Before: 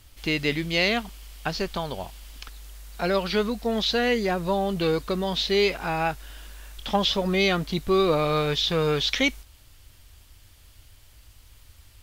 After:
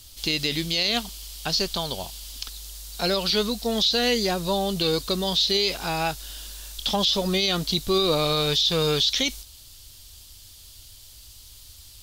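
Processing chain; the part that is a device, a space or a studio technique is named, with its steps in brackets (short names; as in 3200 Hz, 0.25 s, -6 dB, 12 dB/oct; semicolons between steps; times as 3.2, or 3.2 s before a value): over-bright horn tweeter (resonant high shelf 2900 Hz +10.5 dB, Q 1.5; limiter -12.5 dBFS, peak gain reduction 11 dB)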